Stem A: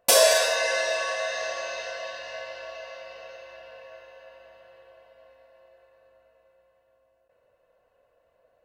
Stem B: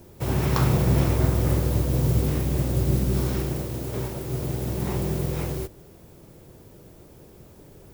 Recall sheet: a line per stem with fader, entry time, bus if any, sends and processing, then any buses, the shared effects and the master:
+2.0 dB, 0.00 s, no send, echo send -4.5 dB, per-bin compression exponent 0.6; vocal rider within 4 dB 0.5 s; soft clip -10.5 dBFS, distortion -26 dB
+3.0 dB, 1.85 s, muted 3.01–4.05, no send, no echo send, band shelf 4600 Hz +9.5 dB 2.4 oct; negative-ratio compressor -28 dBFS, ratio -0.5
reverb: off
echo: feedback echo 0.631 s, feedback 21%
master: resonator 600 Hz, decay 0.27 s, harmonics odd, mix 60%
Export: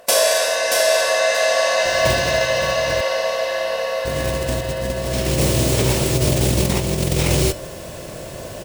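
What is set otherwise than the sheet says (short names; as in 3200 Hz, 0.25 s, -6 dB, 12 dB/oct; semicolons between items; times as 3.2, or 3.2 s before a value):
stem A +2.0 dB -> +12.5 dB; stem B +3.0 dB -> +15.0 dB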